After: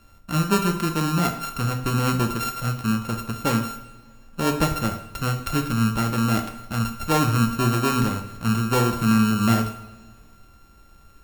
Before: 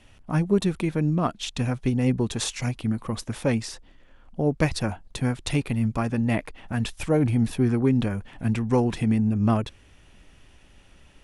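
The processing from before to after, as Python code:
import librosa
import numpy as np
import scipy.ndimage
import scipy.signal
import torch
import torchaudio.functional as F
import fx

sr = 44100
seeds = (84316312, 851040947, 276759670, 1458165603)

y = np.r_[np.sort(x[:len(x) // 32 * 32].reshape(-1, 32), axis=1).ravel(), x[len(x) // 32 * 32:]]
y = fx.rev_double_slope(y, sr, seeds[0], early_s=0.62, late_s=2.2, knee_db=-18, drr_db=4.0)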